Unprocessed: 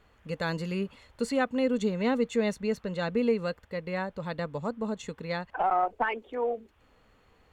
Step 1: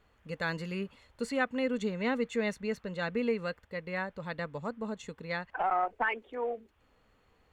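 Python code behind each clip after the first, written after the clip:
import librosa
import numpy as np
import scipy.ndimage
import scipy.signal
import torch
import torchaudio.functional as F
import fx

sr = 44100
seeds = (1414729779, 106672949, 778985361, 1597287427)

y = fx.dynamic_eq(x, sr, hz=1900.0, q=1.1, threshold_db=-46.0, ratio=4.0, max_db=7)
y = y * 10.0 ** (-5.0 / 20.0)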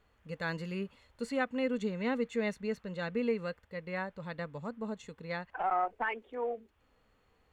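y = fx.hpss(x, sr, part='harmonic', gain_db=4)
y = y * 10.0 ** (-5.0 / 20.0)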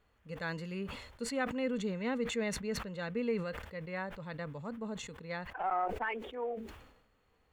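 y = fx.sustainer(x, sr, db_per_s=62.0)
y = y * 10.0 ** (-2.5 / 20.0)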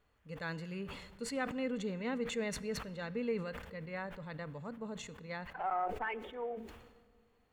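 y = fx.room_shoebox(x, sr, seeds[0], volume_m3=3600.0, walls='mixed', distance_m=0.36)
y = y * 10.0 ** (-2.5 / 20.0)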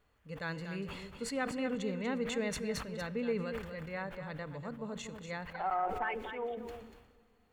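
y = x + 10.0 ** (-9.0 / 20.0) * np.pad(x, (int(240 * sr / 1000.0), 0))[:len(x)]
y = y * 10.0 ** (1.5 / 20.0)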